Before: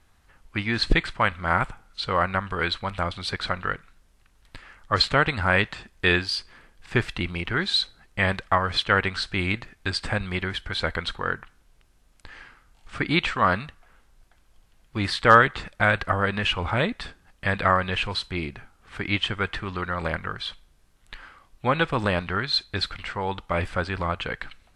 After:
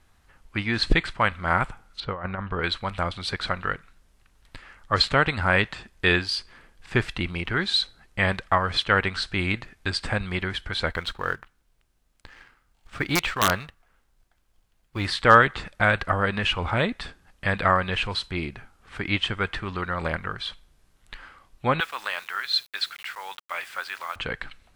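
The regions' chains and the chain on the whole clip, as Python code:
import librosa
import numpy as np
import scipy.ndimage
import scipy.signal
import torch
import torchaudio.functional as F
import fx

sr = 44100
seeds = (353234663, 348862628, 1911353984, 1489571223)

y = fx.chain(x, sr, fx.spacing_loss(db_at_10k=29),
    fx.over_compress(threshold_db=-28.0, ratio=-0.5), at=(2.0, 2.64))
y = fx.chain(y, sr, fx.law_mismatch(coded='A'),
    fx.dynamic_eq(hz=230.0, q=3.5, threshold_db=-46.0, ratio=4.0, max_db=-7),
    fx.overflow_wrap(gain_db=10.5), at=(10.92, 15.06))
y = fx.chain(y, sr, fx.highpass(hz=1300.0, slope=12),
    fx.quant_dither(seeds[0], bits=8, dither='none'), at=(21.8, 24.16))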